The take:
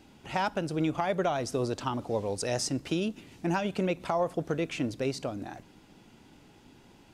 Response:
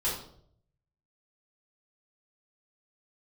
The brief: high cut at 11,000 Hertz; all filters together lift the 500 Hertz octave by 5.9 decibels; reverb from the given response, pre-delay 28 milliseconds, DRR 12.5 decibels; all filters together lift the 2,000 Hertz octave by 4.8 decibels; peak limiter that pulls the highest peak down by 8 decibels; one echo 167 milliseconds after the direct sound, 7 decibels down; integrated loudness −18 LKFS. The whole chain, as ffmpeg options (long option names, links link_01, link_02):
-filter_complex "[0:a]lowpass=11000,equalizer=frequency=500:width_type=o:gain=7,equalizer=frequency=2000:width_type=o:gain=6,alimiter=limit=-18.5dB:level=0:latency=1,aecho=1:1:167:0.447,asplit=2[link_01][link_02];[1:a]atrim=start_sample=2205,adelay=28[link_03];[link_02][link_03]afir=irnorm=-1:irlink=0,volume=-19.5dB[link_04];[link_01][link_04]amix=inputs=2:normalize=0,volume=10.5dB"